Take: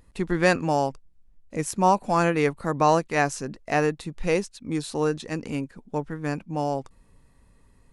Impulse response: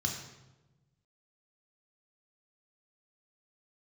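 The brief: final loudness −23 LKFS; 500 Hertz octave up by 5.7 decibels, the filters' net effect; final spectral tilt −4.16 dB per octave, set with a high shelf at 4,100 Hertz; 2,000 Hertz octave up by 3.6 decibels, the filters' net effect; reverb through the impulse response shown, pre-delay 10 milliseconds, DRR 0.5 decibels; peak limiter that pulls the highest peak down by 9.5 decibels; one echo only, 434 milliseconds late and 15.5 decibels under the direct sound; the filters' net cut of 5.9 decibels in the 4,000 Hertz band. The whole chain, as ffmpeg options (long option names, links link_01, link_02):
-filter_complex "[0:a]equalizer=frequency=500:width_type=o:gain=6.5,equalizer=frequency=2000:width_type=o:gain=6.5,equalizer=frequency=4000:width_type=o:gain=-7.5,highshelf=frequency=4100:gain=-4.5,alimiter=limit=-11dB:level=0:latency=1,aecho=1:1:434:0.168,asplit=2[link_01][link_02];[1:a]atrim=start_sample=2205,adelay=10[link_03];[link_02][link_03]afir=irnorm=-1:irlink=0,volume=-4.5dB[link_04];[link_01][link_04]amix=inputs=2:normalize=0,volume=-1.5dB"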